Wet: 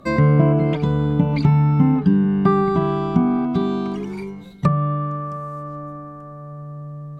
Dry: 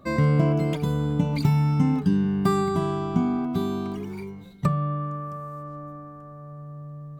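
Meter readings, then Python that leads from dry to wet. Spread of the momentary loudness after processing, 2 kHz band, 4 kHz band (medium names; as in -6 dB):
18 LU, +5.0 dB, +1.0 dB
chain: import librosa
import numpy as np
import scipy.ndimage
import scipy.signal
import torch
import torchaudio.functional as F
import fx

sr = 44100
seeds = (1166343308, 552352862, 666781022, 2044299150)

y = fx.env_lowpass_down(x, sr, base_hz=2000.0, full_db=-18.5)
y = fx.peak_eq(y, sr, hz=100.0, db=-11.5, octaves=0.22)
y = y * 10.0 ** (6.0 / 20.0)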